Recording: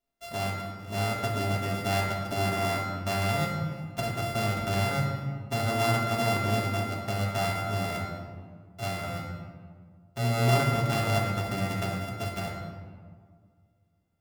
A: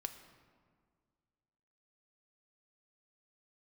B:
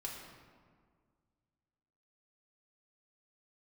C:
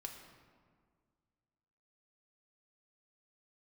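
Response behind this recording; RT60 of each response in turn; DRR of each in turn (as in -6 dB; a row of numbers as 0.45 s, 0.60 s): B; 1.9 s, 1.8 s, 1.9 s; 7.0 dB, -3.5 dB, 1.5 dB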